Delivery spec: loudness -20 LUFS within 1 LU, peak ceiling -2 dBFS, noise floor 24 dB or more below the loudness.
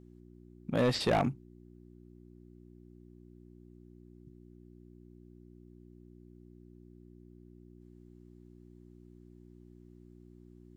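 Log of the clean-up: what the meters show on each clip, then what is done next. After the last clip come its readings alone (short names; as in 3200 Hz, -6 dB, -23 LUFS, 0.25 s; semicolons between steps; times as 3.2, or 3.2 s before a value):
clipped 0.3%; flat tops at -22.0 dBFS; hum 60 Hz; harmonics up to 360 Hz; hum level -52 dBFS; loudness -31.0 LUFS; peak -22.0 dBFS; loudness target -20.0 LUFS
-> clip repair -22 dBFS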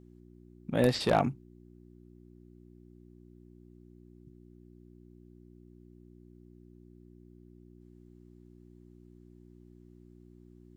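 clipped 0.0%; hum 60 Hz; harmonics up to 360 Hz; hum level -52 dBFS
-> de-hum 60 Hz, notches 6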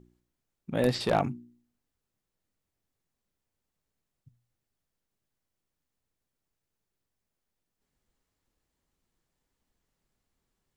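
hum none; loudness -29.0 LUFS; peak -12.5 dBFS; loudness target -20.0 LUFS
-> gain +9 dB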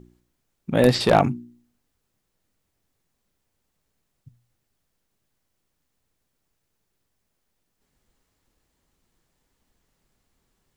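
loudness -20.0 LUFS; peak -3.5 dBFS; noise floor -77 dBFS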